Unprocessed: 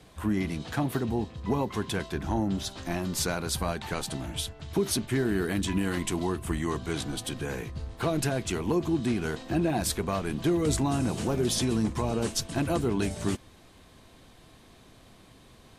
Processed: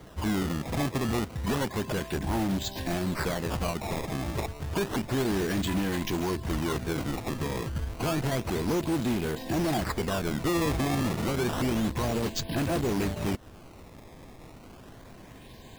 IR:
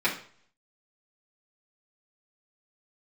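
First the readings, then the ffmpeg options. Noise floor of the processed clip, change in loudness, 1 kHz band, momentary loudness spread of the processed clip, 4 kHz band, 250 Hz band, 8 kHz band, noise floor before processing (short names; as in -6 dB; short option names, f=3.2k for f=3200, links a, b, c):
-49 dBFS, 0.0 dB, +1.0 dB, 21 LU, -1.0 dB, -0.5 dB, -4.5 dB, -55 dBFS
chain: -filter_complex "[0:a]asuperstop=centerf=1300:order=8:qfactor=3.1,aresample=11025,aresample=44100,asplit=2[a][b];[b]acrusher=bits=4:mix=0:aa=0.000001,volume=-3dB[c];[a][c]amix=inputs=2:normalize=0,acompressor=threshold=-29dB:ratio=3,acrusher=samples=17:mix=1:aa=0.000001:lfo=1:lforange=27.2:lforate=0.3,asoftclip=type=hard:threshold=-30.5dB,volume=6.5dB"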